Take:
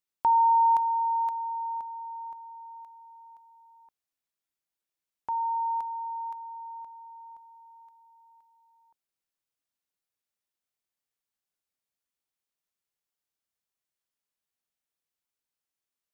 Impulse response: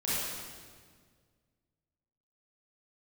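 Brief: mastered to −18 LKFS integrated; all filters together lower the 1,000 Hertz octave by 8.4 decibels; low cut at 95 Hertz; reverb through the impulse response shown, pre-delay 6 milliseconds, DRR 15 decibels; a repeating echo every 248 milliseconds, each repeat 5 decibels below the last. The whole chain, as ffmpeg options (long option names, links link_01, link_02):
-filter_complex "[0:a]highpass=95,equalizer=frequency=1000:width_type=o:gain=-9,aecho=1:1:248|496|744|992|1240|1488|1736:0.562|0.315|0.176|0.0988|0.0553|0.031|0.0173,asplit=2[link_01][link_02];[1:a]atrim=start_sample=2205,adelay=6[link_03];[link_02][link_03]afir=irnorm=-1:irlink=0,volume=-23dB[link_04];[link_01][link_04]amix=inputs=2:normalize=0,volume=18.5dB"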